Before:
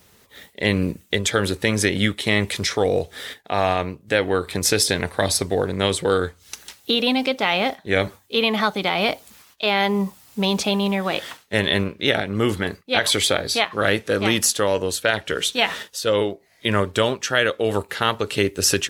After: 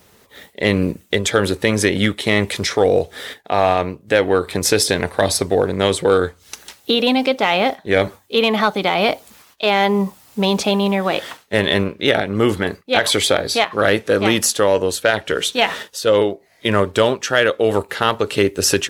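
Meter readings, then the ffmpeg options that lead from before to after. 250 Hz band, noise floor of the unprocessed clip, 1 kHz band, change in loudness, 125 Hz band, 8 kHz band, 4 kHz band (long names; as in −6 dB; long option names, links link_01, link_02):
+4.0 dB, −55 dBFS, +4.5 dB, +3.5 dB, +2.0 dB, +1.5 dB, +1.5 dB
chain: -filter_complex "[0:a]equalizer=frequency=560:width_type=o:width=2.8:gain=4.5,asplit=2[link_01][link_02];[link_02]volume=7.5dB,asoftclip=hard,volume=-7.5dB,volume=-4dB[link_03];[link_01][link_03]amix=inputs=2:normalize=0,volume=-3dB"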